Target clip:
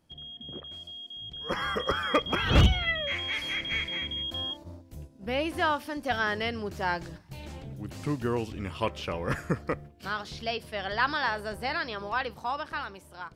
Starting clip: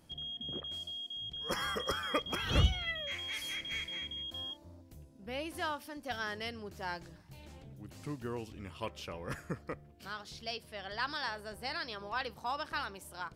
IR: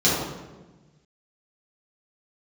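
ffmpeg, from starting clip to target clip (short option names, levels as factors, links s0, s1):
-filter_complex "[0:a]agate=range=0.447:threshold=0.00224:ratio=16:detection=peak,acrossover=split=3500[s0][s1];[s1]acompressor=threshold=0.002:ratio=4:attack=1:release=60[s2];[s0][s2]amix=inputs=2:normalize=0,asetnsamples=n=441:p=0,asendcmd='2.78 highshelf g -10.5;4.12 highshelf g -4.5',highshelf=f=7400:g=-5,dynaudnorm=f=400:g=9:m=2.99,aeval=exprs='0.224*(abs(mod(val(0)/0.224+3,4)-2)-1)':c=same,volume=1.12"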